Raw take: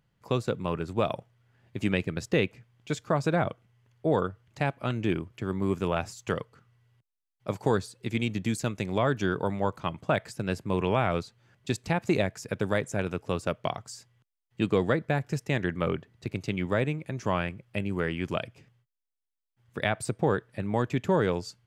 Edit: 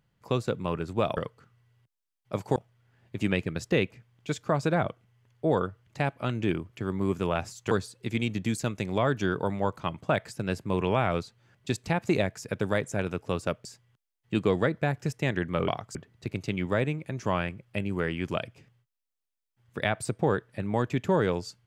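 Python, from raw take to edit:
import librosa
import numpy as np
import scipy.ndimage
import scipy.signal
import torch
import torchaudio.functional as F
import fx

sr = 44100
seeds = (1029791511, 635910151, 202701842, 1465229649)

y = fx.edit(x, sr, fx.move(start_s=6.32, length_s=1.39, to_s=1.17),
    fx.move(start_s=13.65, length_s=0.27, to_s=15.95), tone=tone)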